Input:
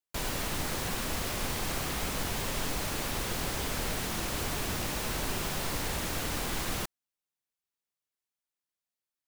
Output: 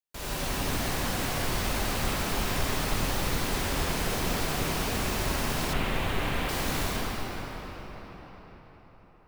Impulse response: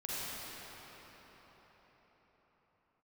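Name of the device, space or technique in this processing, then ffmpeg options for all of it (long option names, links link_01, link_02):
cathedral: -filter_complex "[1:a]atrim=start_sample=2205[link_01];[0:a][link_01]afir=irnorm=-1:irlink=0,asettb=1/sr,asplit=3[link_02][link_03][link_04];[link_02]atrim=end=5.734[link_05];[link_03]atrim=start=5.73:end=6.49,asetpts=PTS-STARTPTS,afade=type=in:duration=0.004:curve=qsin,afade=type=out:start_time=0.756:duration=0.004:curve=qsin,highshelf=frequency=4000:width_type=q:width=1.5:gain=-8[link_06];[link_04]atrim=start=6.486[link_07];[link_05][link_06]acrossfade=duration=0.004:curve1=hsin:curve2=qsin[link_08];[link_08][link_07]acrossfade=duration=0.004:curve1=qsin:curve2=hsin"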